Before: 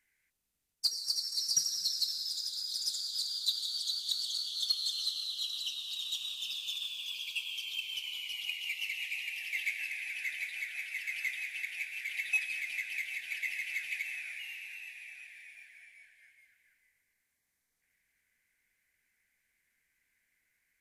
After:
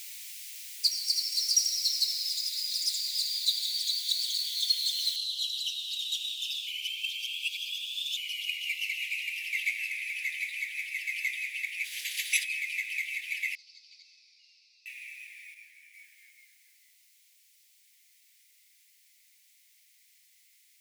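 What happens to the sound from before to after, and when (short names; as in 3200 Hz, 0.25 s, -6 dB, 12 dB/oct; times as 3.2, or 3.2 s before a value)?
5.16 noise floor step -47 dB -67 dB
6.67–8.17 reverse
11.84–12.43 spectral limiter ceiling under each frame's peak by 23 dB
13.55–14.86 Butterworth band-pass 4800 Hz, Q 4
15.54–15.94 detuned doubles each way 44 cents
whole clip: elliptic high-pass 2100 Hz, stop band 70 dB; gain +4.5 dB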